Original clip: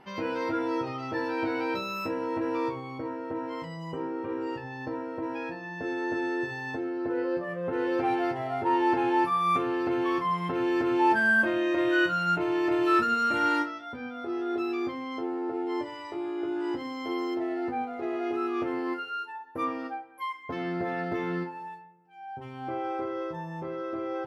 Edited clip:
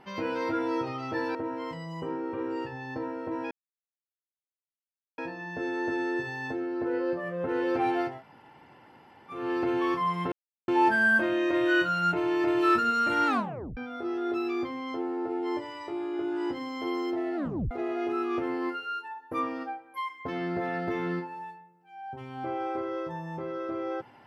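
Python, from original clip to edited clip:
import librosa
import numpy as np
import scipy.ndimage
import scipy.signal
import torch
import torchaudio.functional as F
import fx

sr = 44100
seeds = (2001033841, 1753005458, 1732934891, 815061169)

y = fx.edit(x, sr, fx.cut(start_s=1.35, length_s=1.91),
    fx.insert_silence(at_s=5.42, length_s=1.67),
    fx.room_tone_fill(start_s=8.36, length_s=1.28, crossfade_s=0.24),
    fx.silence(start_s=10.56, length_s=0.36),
    fx.tape_stop(start_s=13.51, length_s=0.5),
    fx.tape_stop(start_s=17.6, length_s=0.35), tone=tone)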